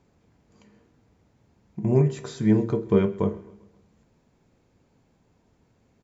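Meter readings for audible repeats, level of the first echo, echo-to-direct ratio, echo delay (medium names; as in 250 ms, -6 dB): 3, -21.5 dB, -20.0 dB, 132 ms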